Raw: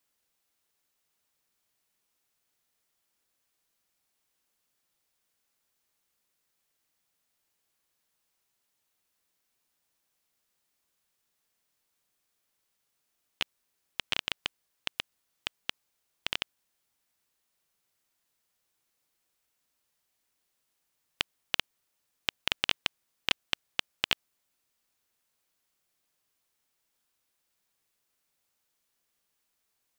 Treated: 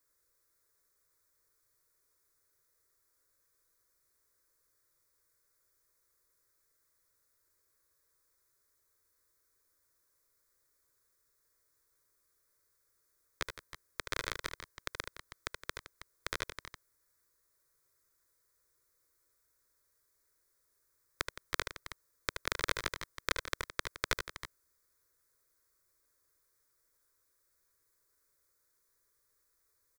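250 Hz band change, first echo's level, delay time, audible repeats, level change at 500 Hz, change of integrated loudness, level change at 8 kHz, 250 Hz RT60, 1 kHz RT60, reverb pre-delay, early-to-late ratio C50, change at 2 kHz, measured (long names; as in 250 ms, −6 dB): −1.0 dB, −7.0 dB, 75 ms, 3, +3.5 dB, −5.5 dB, +2.0 dB, no reverb audible, no reverb audible, no reverb audible, no reverb audible, −2.5 dB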